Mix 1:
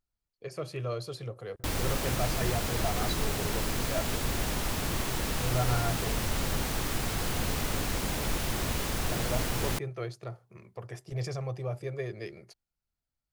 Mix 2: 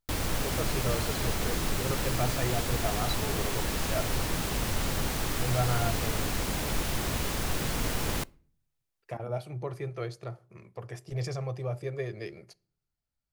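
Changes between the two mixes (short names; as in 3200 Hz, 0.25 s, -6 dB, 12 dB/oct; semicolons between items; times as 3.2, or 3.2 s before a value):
background: entry -1.55 s; reverb: on, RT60 0.45 s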